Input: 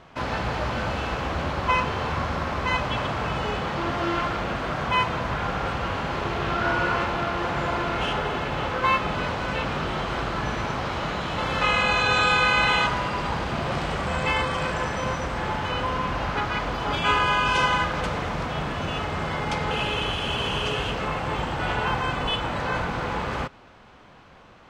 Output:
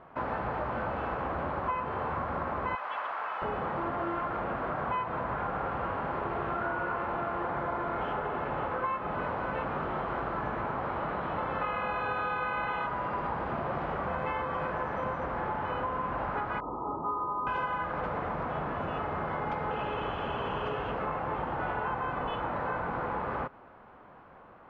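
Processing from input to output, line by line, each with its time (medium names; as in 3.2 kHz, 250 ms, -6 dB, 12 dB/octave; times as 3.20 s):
2.75–3.42 s: high-pass 970 Hz
7.48–8.12 s: band-stop 2.7 kHz
10.48–12.71 s: peaking EQ 9.4 kHz -10.5 dB
16.60–17.47 s: rippled Chebyshev low-pass 1.3 kHz, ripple 9 dB
whole clip: Chebyshev low-pass 1.2 kHz, order 2; bass shelf 190 Hz -8.5 dB; compression, threshold -29 dBFS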